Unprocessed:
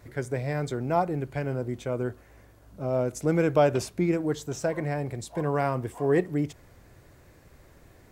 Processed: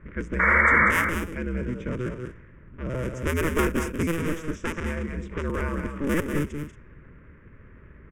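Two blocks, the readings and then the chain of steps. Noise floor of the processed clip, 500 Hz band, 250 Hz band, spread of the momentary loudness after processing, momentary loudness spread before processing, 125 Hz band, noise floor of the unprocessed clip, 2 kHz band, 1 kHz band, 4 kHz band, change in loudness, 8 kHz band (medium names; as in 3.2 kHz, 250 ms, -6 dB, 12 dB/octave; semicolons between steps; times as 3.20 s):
-50 dBFS, -4.0 dB, +0.5 dB, 15 LU, 9 LU, -0.5 dB, -56 dBFS, +15.0 dB, +3.0 dB, +3.0 dB, +3.0 dB, +1.0 dB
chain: cycle switcher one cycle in 2, inverted; level-controlled noise filter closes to 2.8 kHz, open at -22 dBFS; in parallel at 0 dB: compression, threshold -38 dBFS, peak gain reduction 20 dB; on the sum: painted sound noise, 0.39–0.91 s, 450–2300 Hz -17 dBFS; static phaser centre 1.8 kHz, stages 4; level-controlled noise filter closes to 1.9 kHz, open at -22 dBFS; on a send: multi-tap echo 189/229 ms -6.5/-12.5 dB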